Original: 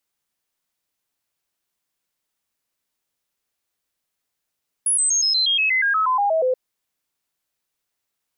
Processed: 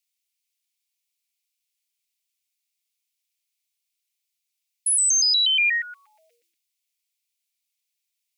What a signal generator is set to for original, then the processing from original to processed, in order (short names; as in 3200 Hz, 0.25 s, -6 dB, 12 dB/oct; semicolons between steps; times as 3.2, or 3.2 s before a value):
stepped sine 10300 Hz down, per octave 3, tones 14, 0.12 s, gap 0.00 s -16 dBFS
elliptic high-pass 2400 Hz, stop band 50 dB; transient shaper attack -1 dB, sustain +8 dB; frequency shift -170 Hz